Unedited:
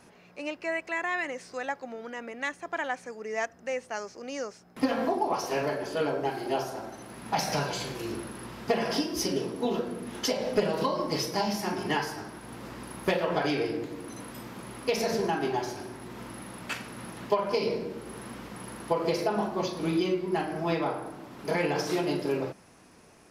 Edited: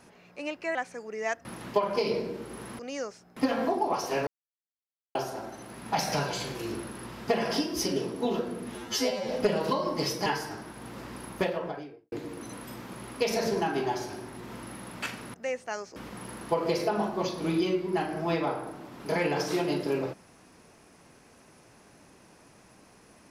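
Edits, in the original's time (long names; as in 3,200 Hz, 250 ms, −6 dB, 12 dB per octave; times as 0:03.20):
0:00.75–0:02.87: remove
0:03.57–0:04.19: swap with 0:17.01–0:18.35
0:05.67–0:06.55: silence
0:10.15–0:10.42: time-stretch 2×
0:11.39–0:11.93: remove
0:12.87–0:13.79: fade out and dull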